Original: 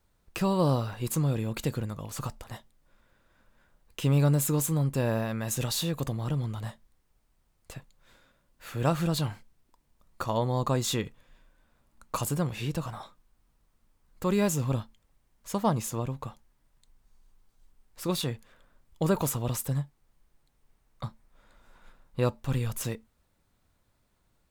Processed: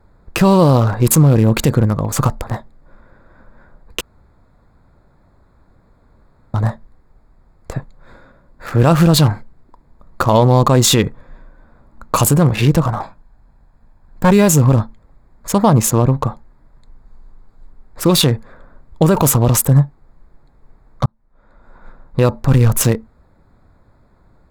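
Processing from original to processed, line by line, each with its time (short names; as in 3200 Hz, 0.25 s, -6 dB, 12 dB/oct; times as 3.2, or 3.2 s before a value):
4.01–6.54 room tone
13.01–14.31 minimum comb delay 1.2 ms
21.06–22.33 fade in
whole clip: Wiener smoothing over 15 samples; maximiser +21 dB; gain -1 dB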